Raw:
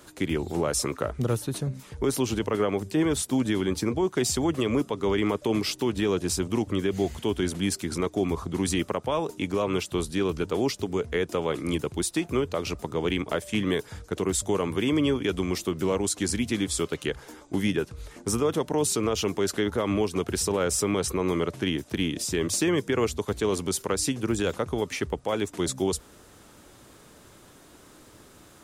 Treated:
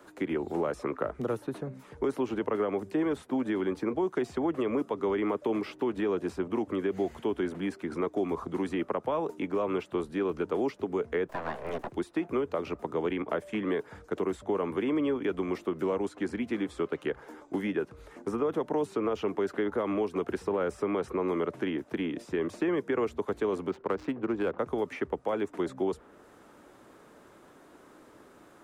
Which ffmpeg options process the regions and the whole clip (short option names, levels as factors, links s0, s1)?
-filter_complex "[0:a]asettb=1/sr,asplit=3[s0][s1][s2];[s0]atrim=end=11.284[s3];[s1]atrim=start=11.28:end=11.92,asetpts=PTS-STARTPTS,afade=t=in:d=0.004:c=qsin,afade=t=out:st=0.636:d=0.004:c=qsin,bandreject=f=430:w=8.5,aeval=exprs='abs(val(0))':c=same[s4];[s2]atrim=start=11.916[s5];[s3][s4]acrossfade=d=0.004:c1=hsin:c2=qsin[s6];[s6][s5]acrossfade=d=0.004:c1=qsin:c2=hsin,asettb=1/sr,asplit=3[s7][s8][s9];[s7]atrim=end=23.694[s10];[s8]atrim=start=23.69:end=24.59,asetpts=PTS-STARTPTS,afade=t=in:d=0.004:c=qsin,afade=t=out:st=0.896:d=0.004:c=qsin,lowpass=6100,adynamicsmooth=sensitivity=6:basefreq=920[s11];[s9]atrim=start=24.586[s12];[s10][s11]acrossfade=d=0.004:c1=hsin:c2=qsin[s13];[s13][s12]acrossfade=d=0.004:c1=qsin:c2=hsin,acrossover=split=200 2100:gain=0.224 1 0.224[s14][s15][s16];[s14][s15][s16]amix=inputs=3:normalize=0,acrossover=split=240|3100[s17][s18][s19];[s17]acompressor=threshold=0.0112:ratio=4[s20];[s18]acompressor=threshold=0.0501:ratio=4[s21];[s19]acompressor=threshold=0.00112:ratio=4[s22];[s20][s21][s22]amix=inputs=3:normalize=0"